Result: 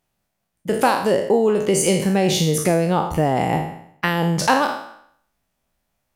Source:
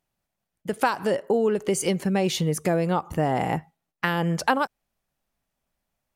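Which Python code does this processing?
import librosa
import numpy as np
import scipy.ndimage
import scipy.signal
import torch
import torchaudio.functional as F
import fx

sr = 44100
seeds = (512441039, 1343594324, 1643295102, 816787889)

y = fx.spec_trails(x, sr, decay_s=0.64)
y = fx.dynamic_eq(y, sr, hz=1500.0, q=1.2, threshold_db=-35.0, ratio=4.0, max_db=-4)
y = y * librosa.db_to_amplitude(4.5)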